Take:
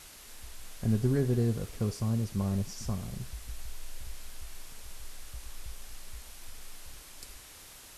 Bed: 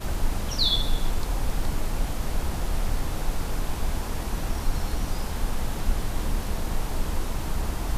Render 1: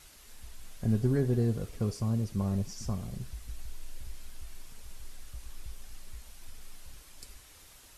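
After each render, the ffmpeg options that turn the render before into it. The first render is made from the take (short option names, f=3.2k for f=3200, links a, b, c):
-af "afftdn=nr=6:nf=-51"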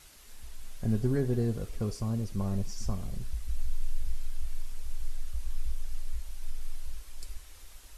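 -af "asubboost=boost=5.5:cutoff=54"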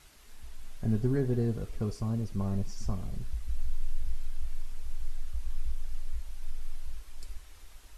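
-af "highshelf=f=4k:g=-6.5,bandreject=f=530:w=14"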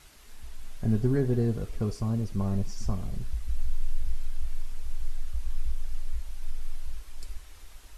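-af "volume=3dB"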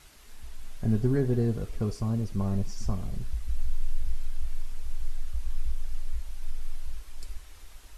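-af anull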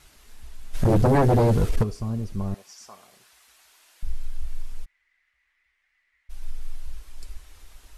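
-filter_complex "[0:a]asplit=3[a][b][c];[a]afade=t=out:st=0.73:d=0.02[d];[b]aeval=exprs='0.2*sin(PI/2*3.16*val(0)/0.2)':c=same,afade=t=in:st=0.73:d=0.02,afade=t=out:st=1.82:d=0.02[e];[c]afade=t=in:st=1.82:d=0.02[f];[d][e][f]amix=inputs=3:normalize=0,asettb=1/sr,asplit=3[g][h][i];[g]atrim=end=2.544[j];[h]atrim=start=2.54:end=4.03,asetpts=PTS-STARTPTS,afade=t=in:d=0.004:c=qsin,afade=t=out:st=1.486:d=0.004:c=qsin,highpass=810[k];[i]atrim=start=4.026[l];[j][k]acrossfade=d=0.004:c1=hsin:c2=qsin[m];[m][l]acrossfade=d=0.004:c1=qsin:c2=hsin,asplit=3[n][o][p];[n]afade=t=out:st=4.84:d=0.02[q];[o]bandpass=f=2k:t=q:w=10,afade=t=in:st=4.84:d=0.02,afade=t=out:st=6.29:d=0.02[r];[p]afade=t=in:st=6.29:d=0.02[s];[q][r][s]amix=inputs=3:normalize=0"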